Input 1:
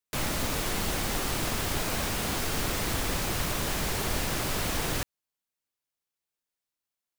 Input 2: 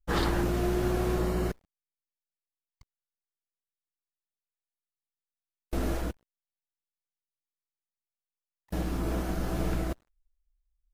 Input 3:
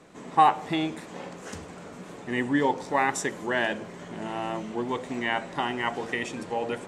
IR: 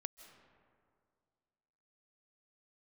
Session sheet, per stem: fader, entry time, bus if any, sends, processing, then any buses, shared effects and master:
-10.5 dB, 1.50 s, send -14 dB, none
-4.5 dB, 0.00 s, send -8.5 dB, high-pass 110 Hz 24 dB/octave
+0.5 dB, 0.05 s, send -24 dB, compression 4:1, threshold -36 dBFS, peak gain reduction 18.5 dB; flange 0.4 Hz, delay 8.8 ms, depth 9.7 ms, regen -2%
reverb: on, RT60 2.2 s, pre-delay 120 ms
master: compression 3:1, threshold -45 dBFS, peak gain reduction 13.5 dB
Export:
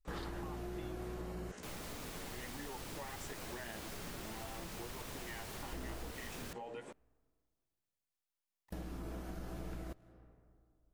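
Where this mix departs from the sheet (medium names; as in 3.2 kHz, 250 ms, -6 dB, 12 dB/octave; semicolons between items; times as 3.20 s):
stem 2: missing high-pass 110 Hz 24 dB/octave; stem 3: send off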